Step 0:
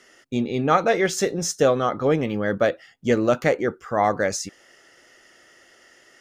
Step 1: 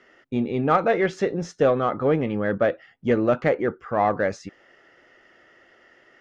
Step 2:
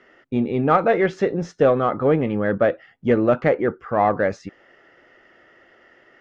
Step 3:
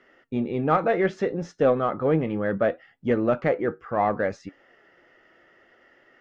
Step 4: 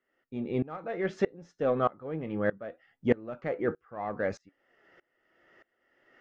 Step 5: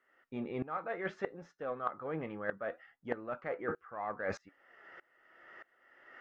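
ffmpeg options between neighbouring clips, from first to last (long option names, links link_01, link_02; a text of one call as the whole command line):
ffmpeg -i in.wav -filter_complex "[0:a]lowpass=2400,asplit=2[link_01][link_02];[link_02]asoftclip=type=tanh:threshold=-18dB,volume=-8.5dB[link_03];[link_01][link_03]amix=inputs=2:normalize=0,volume=-2.5dB" out.wav
ffmpeg -i in.wav -af "lowpass=frequency=3100:poles=1,volume=3dB" out.wav
ffmpeg -i in.wav -af "flanger=delay=3.5:depth=2.8:regen=81:speed=0.67:shape=sinusoidal" out.wav
ffmpeg -i in.wav -af "aeval=exprs='val(0)*pow(10,-24*if(lt(mod(-1.6*n/s,1),2*abs(-1.6)/1000),1-mod(-1.6*n/s,1)/(2*abs(-1.6)/1000),(mod(-1.6*n/s,1)-2*abs(-1.6)/1000)/(1-2*abs(-1.6)/1000))/20)':channel_layout=same" out.wav
ffmpeg -i in.wav -af "equalizer=frequency=1300:width_type=o:width=2.3:gain=13,areverse,acompressor=threshold=-30dB:ratio=16,areverse,volume=-3dB" out.wav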